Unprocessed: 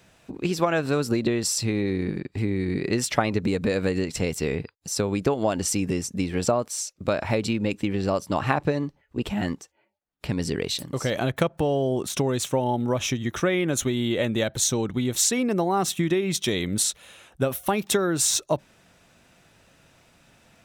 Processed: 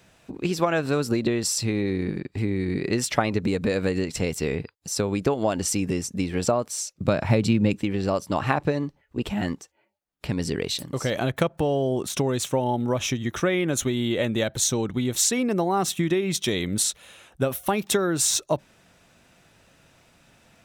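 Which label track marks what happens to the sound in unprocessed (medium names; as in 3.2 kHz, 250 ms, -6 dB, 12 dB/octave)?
6.680000	7.790000	peaking EQ 140 Hz +9 dB 1.6 oct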